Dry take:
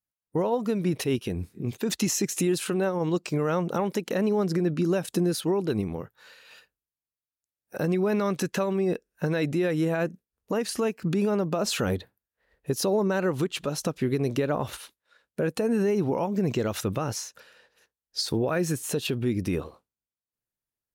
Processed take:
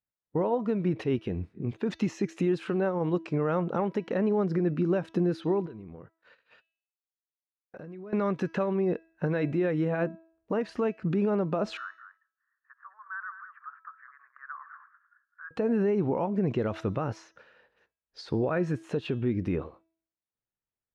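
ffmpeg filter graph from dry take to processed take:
ffmpeg -i in.wav -filter_complex "[0:a]asettb=1/sr,asplit=3[link_01][link_02][link_03];[link_01]atrim=end=5.664[link_04];[link_02]atrim=start=5.66:end=8.13,asetpts=PTS-STARTPTS,afade=type=in:duration=0.004:curve=qsin,afade=type=out:start_time=2.466:duration=0.004:curve=qsin,agate=range=-32dB:threshold=-52dB:ratio=16:release=100:detection=peak,acompressor=threshold=-39dB:ratio=6:attack=3.2:release=140:knee=1:detection=peak,bandreject=frequency=840:width=11[link_05];[link_03]atrim=start=8.126[link_06];[link_04][link_05]acrossfade=duration=0.004:curve1=hsin:curve2=qsin[link_07];[link_07][link_06]acrossfade=duration=0.004:curve1=qsin:curve2=hsin,asettb=1/sr,asplit=3[link_08][link_09][link_10];[link_08]atrim=end=11.774[link_11];[link_09]atrim=start=11.77:end=15.51,asetpts=PTS-STARTPTS,afade=type=in:duration=0.004:curve=qsin,afade=type=out:start_time=3.736:duration=0.004:curve=qsin,asuperpass=centerf=1400:order=8:qfactor=2.1,aecho=1:1:207:0.282,atrim=end_sample=164934[link_12];[link_10]atrim=start=15.506[link_13];[link_11][link_12]acrossfade=duration=0.004:curve1=hsin:curve2=qsin[link_14];[link_14][link_13]acrossfade=duration=0.004:curve1=qsin:curve2=hsin,lowpass=2100,bandreject=frequency=326.6:width_type=h:width=4,bandreject=frequency=653.2:width_type=h:width=4,bandreject=frequency=979.8:width_type=h:width=4,bandreject=frequency=1306.4:width_type=h:width=4,bandreject=frequency=1633:width_type=h:width=4,bandreject=frequency=1959.6:width_type=h:width=4,bandreject=frequency=2286.2:width_type=h:width=4,bandreject=frequency=2612.8:width_type=h:width=4,bandreject=frequency=2939.4:width_type=h:width=4,bandreject=frequency=3266:width_type=h:width=4,bandreject=frequency=3592.6:width_type=h:width=4,bandreject=frequency=3919.2:width_type=h:width=4,bandreject=frequency=4245.8:width_type=h:width=4,bandreject=frequency=4572.4:width_type=h:width=4,bandreject=frequency=4899:width_type=h:width=4,bandreject=frequency=5225.6:width_type=h:width=4,bandreject=frequency=5552.2:width_type=h:width=4,bandreject=frequency=5878.8:width_type=h:width=4,bandreject=frequency=6205.4:width_type=h:width=4,bandreject=frequency=6532:width_type=h:width=4,volume=-1.5dB" out.wav

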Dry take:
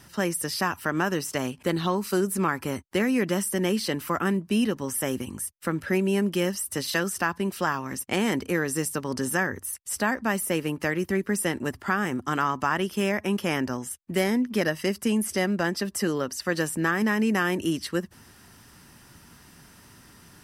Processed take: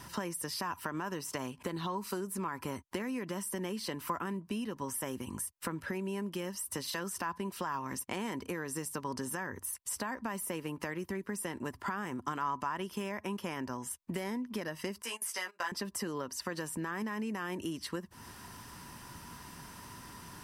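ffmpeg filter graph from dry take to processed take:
ffmpeg -i in.wav -filter_complex "[0:a]asettb=1/sr,asplit=3[link_01][link_02][link_03];[link_01]atrim=end=15.024[link_04];[link_02]atrim=start=15.02:end=15.72,asetpts=PTS-STARTPTS,afade=type=in:duration=0.004:curve=qsin,afade=type=out:start_time=0.696:duration=0.004:curve=qsin,highpass=950,asplit=2[link_05][link_06];[link_06]adelay=17,volume=-3.5dB[link_07];[link_05][link_07]amix=inputs=2:normalize=0,atrim=end_sample=30870,agate=range=-19dB:threshold=-38dB:ratio=16:release=100:detection=peak[link_08];[link_03]atrim=start=15.716[link_09];[link_04][link_08]acrossfade=duration=0.004:curve1=hsin:curve2=qsin[link_10];[link_10][link_09]acrossfade=duration=0.004:curve1=qsin:curve2=hsin,alimiter=limit=-15.5dB:level=0:latency=1,acompressor=threshold=-37dB:ratio=6,equalizer=frequency=990:width_type=o:width=0.23:gain=11.5,volume=1.5dB" out.wav

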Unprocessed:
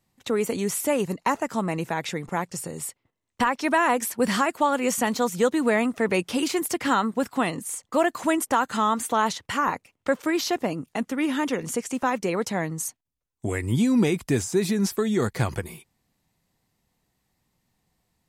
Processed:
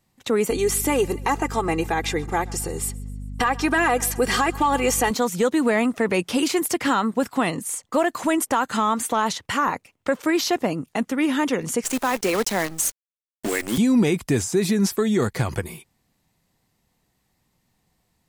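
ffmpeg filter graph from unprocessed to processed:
ffmpeg -i in.wav -filter_complex "[0:a]asettb=1/sr,asplit=3[link_01][link_02][link_03];[link_01]atrim=end=0.504[link_04];[link_02]atrim=start=0.5:end=5.11,asetpts=PTS-STARTPTS,afade=type=in:duration=0.004:curve=qsin,afade=type=out:start_time=4.606:duration=0.004:curve=qsin,aecho=1:1:2.5:0.74,atrim=end_sample=203301,aeval=exprs='val(0)+0.0178*(sin(2*PI*50*n/s)+sin(2*PI*2*50*n/s)/2+sin(2*PI*3*50*n/s)/3+sin(2*PI*4*50*n/s)/4+sin(2*PI*5*50*n/s)/5)':channel_layout=same,aecho=1:1:131|262|393|524:0.0668|0.0361|0.0195|0.0105,atrim=end_sample=203301[link_05];[link_03]atrim=start=5.106[link_06];[link_04][link_05]acrossfade=duration=0.004:curve1=hsin:curve2=qsin[link_07];[link_07][link_06]acrossfade=duration=0.004:curve1=qsin:curve2=hsin,asettb=1/sr,asplit=3[link_08][link_09][link_10];[link_08]atrim=end=11.844[link_11];[link_09]atrim=start=11.84:end=13.78,asetpts=PTS-STARTPTS,afade=type=in:duration=0.004:curve=qsin,afade=type=out:start_time=1.936:duration=0.004:curve=qsin,highpass=frequency=200:width=0.5412,highpass=frequency=200:width=1.3066,highshelf=frequency=2200:gain=5.5,acrusher=bits=6:dc=4:mix=0:aa=0.000001[link_12];[link_10]atrim=start=13.776[link_13];[link_11][link_12]acrossfade=duration=0.004:curve1=hsin:curve2=qsin[link_14];[link_14][link_13]acrossfade=duration=0.004:curve1=qsin:curve2=hsin,acontrast=56,alimiter=limit=-9dB:level=0:latency=1:release=79,volume=-2.5dB" out.wav

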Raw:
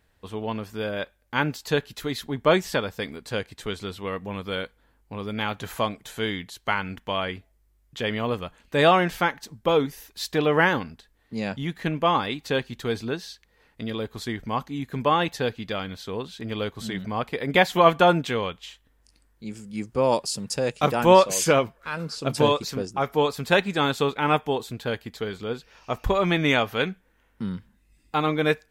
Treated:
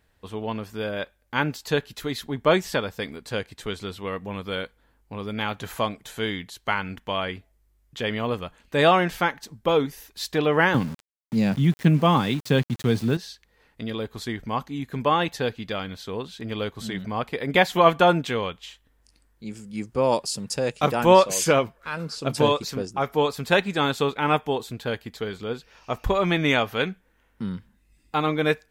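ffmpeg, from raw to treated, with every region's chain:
ffmpeg -i in.wav -filter_complex "[0:a]asettb=1/sr,asplit=3[link_01][link_02][link_03];[link_01]atrim=end=10.744[link_04];[link_02]atrim=start=10.74:end=13.17,asetpts=PTS-STARTPTS,afade=type=in:duration=0.004:curve=qsin,afade=type=out:start_time=2.426:duration=0.004:curve=qsin,highpass=frequency=120:width=0.5412,highpass=frequency=120:width=1.3066,bass=frequency=250:gain=15,treble=frequency=4000:gain=3,aeval=exprs='val(0)*gte(abs(val(0)),0.015)':channel_layout=same[link_05];[link_03]atrim=start=13.166[link_06];[link_04][link_05]acrossfade=duration=0.004:curve1=hsin:curve2=qsin[link_07];[link_07][link_06]acrossfade=duration=0.004:curve1=qsin:curve2=hsin" out.wav

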